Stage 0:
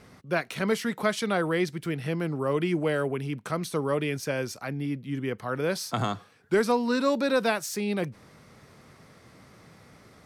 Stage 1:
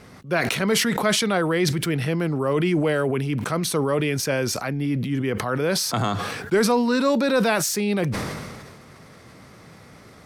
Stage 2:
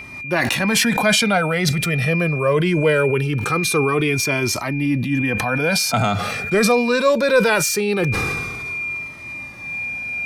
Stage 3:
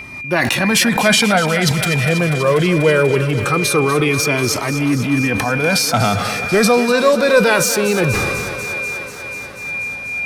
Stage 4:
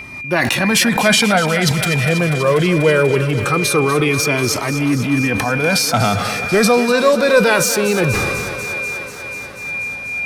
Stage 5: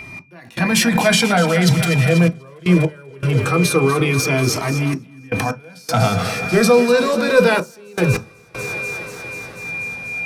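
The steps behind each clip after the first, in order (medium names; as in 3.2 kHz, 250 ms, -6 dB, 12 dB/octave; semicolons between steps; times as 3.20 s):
in parallel at 0 dB: peak limiter -22 dBFS, peak gain reduction 8 dB; on the sum: decay stretcher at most 32 dB/s
whistle 2.4 kHz -30 dBFS; Shepard-style flanger falling 0.22 Hz; trim +8.5 dB
thinning echo 244 ms, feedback 80%, high-pass 190 Hz, level -12 dB; trim +3 dB
no audible change
trance gate "x..xxxxxxxxx.." 79 bpm -24 dB; on a send at -7 dB: reverberation RT60 0.15 s, pre-delay 3 ms; on the sum: trim -3 dB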